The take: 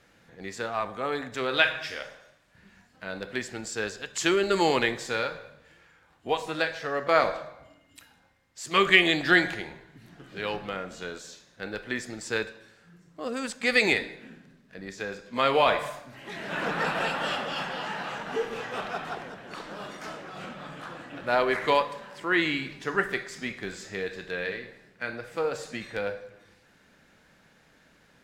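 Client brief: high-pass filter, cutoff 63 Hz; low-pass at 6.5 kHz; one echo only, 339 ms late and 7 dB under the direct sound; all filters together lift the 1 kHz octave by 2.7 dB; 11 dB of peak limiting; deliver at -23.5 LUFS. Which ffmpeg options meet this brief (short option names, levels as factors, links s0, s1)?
-af "highpass=63,lowpass=6500,equalizer=f=1000:t=o:g=3.5,alimiter=limit=0.224:level=0:latency=1,aecho=1:1:339:0.447,volume=1.88"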